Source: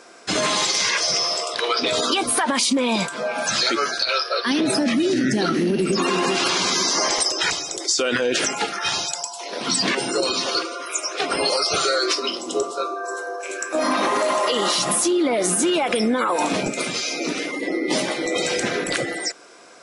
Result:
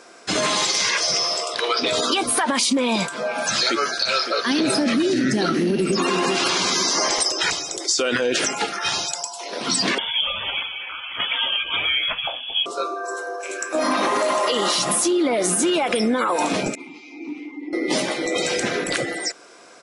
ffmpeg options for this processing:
-filter_complex "[0:a]asplit=2[s0][s1];[s1]afade=t=in:st=3.49:d=0.01,afade=t=out:st=4.46:d=0.01,aecho=0:1:560|1120|1680|2240:0.334965|0.117238|0.0410333|0.0143616[s2];[s0][s2]amix=inputs=2:normalize=0,asettb=1/sr,asplit=3[s3][s4][s5];[s3]atrim=end=9.984[s6];[s4]atrim=start=9.98:end=12.66,asetpts=PTS-STARTPTS,afade=t=in:d=0.004:c=qsin,afade=t=out:st=2.676:d=0.004:c=qsin,lowpass=f=3100:t=q:w=0.5098,lowpass=f=3100:t=q:w=0.6013,lowpass=f=3100:t=q:w=0.9,lowpass=f=3100:t=q:w=2.563,afreqshift=-3700[s7];[s5]atrim=start=12.656[s8];[s6][s7]acrossfade=d=0.004:c1=hsin:c2=qsin[s9];[s9][s8]acrossfade=d=0.004:c1=qsin:c2=hsin,asettb=1/sr,asplit=3[s10][s11][s12];[s10]atrim=end=16.754[s13];[s11]atrim=start=16.75:end=17.73,asetpts=PTS-STARTPTS,afade=t=in:d=0.004:c=qsin,afade=t=out:st=0.976:d=0.004:c=qsin,asplit=3[s14][s15][s16];[s14]bandpass=f=300:t=q:w=8,volume=1[s17];[s15]bandpass=f=870:t=q:w=8,volume=0.501[s18];[s16]bandpass=f=2240:t=q:w=8,volume=0.355[s19];[s17][s18][s19]amix=inputs=3:normalize=0[s20];[s12]atrim=start=17.726[s21];[s13][s20]acrossfade=d=0.004:c1=hsin:c2=qsin[s22];[s22][s21]acrossfade=d=0.004:c1=qsin:c2=hsin"

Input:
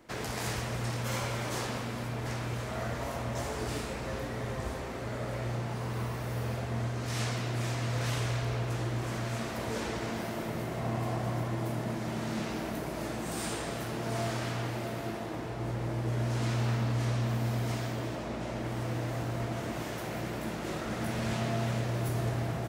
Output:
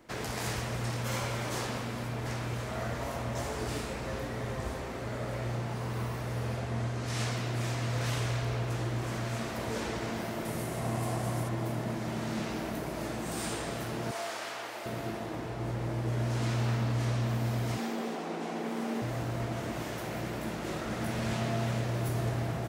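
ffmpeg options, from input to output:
-filter_complex "[0:a]asettb=1/sr,asplit=3[s0][s1][s2];[s0]atrim=end=6.214[s3];[s1]atrim=start=6.21:end=7.2,asetpts=PTS-STARTPTS,afade=t=in:d=0.004:c=qsin,afade=t=out:st=0.986:d=0.004:c=qsin,lowpass=12000[s4];[s2]atrim=start=7.196[s5];[s3][s4]acrossfade=d=0.004:c1=hsin:c2=qsin[s6];[s6][s5]acrossfade=d=0.004:c1=qsin:c2=hsin,asettb=1/sr,asplit=3[s7][s8][s9];[s7]atrim=end=10.454[s10];[s8]atrim=start=10.45:end=11.49,asetpts=PTS-STARTPTS,afade=t=in:d=0.004:c=qsin,afade=t=out:st=1.036:d=0.004:c=qsin,equalizer=f=10000:w=0.88:g=11.5[s11];[s9]atrim=start=11.486[s12];[s10][s11]acrossfade=d=0.004:c1=hsin:c2=qsin[s13];[s13][s12]acrossfade=d=0.004:c1=qsin:c2=hsin,asettb=1/sr,asplit=3[s14][s15][s16];[s14]atrim=end=14.114[s17];[s15]atrim=start=14.11:end=14.86,asetpts=PTS-STARTPTS,afade=t=in:d=0.004:c=qsin,afade=t=out:st=0.746:d=0.004:c=qsin,highpass=570[s18];[s16]atrim=start=14.856[s19];[s17][s18]acrossfade=d=0.004:c1=hsin:c2=qsin[s20];[s20][s19]acrossfade=d=0.004:c1=qsin:c2=hsin,asettb=1/sr,asplit=3[s21][s22][s23];[s21]atrim=end=17.774[s24];[s22]atrim=start=17.77:end=19.02,asetpts=PTS-STARTPTS,afade=t=in:d=0.004:c=qsin,afade=t=out:st=1.246:d=0.004:c=qsin,afreqshift=110[s25];[s23]atrim=start=19.016[s26];[s24][s25]acrossfade=d=0.004:c1=hsin:c2=qsin[s27];[s27][s26]acrossfade=d=0.004:c1=qsin:c2=hsin"

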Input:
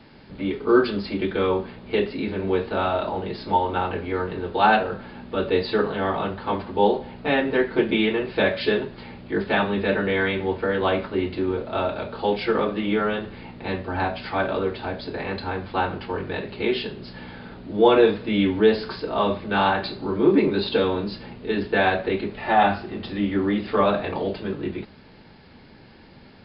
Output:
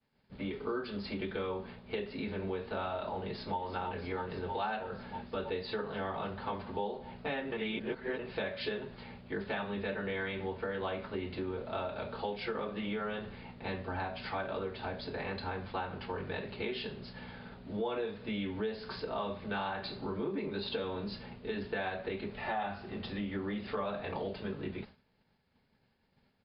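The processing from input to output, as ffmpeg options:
-filter_complex "[0:a]asplit=2[s0][s1];[s1]afade=t=in:st=3.19:d=0.01,afade=t=out:st=3.61:d=0.01,aecho=0:1:320|640|960|1280|1600|1920|2240|2560|2880|3200|3520|3840:0.375837|0.30067|0.240536|0.192429|0.153943|0.123154|0.0985235|0.0788188|0.0630551|0.050444|0.0403552|0.0322842[s2];[s0][s2]amix=inputs=2:normalize=0,asplit=3[s3][s4][s5];[s3]atrim=end=7.522[s6];[s4]atrim=start=7.518:end=8.192,asetpts=PTS-STARTPTS,areverse[s7];[s5]atrim=start=8.188[s8];[s6][s7]acrossfade=d=0.004:c1=hsin:c2=hsin[s9];[s9][s8]acrossfade=d=0.004:c1=hsin:c2=hsin,equalizer=f=320:t=o:w=0.24:g=-11.5,agate=range=0.0224:threshold=0.0141:ratio=3:detection=peak,acompressor=threshold=0.0447:ratio=5,volume=0.473"

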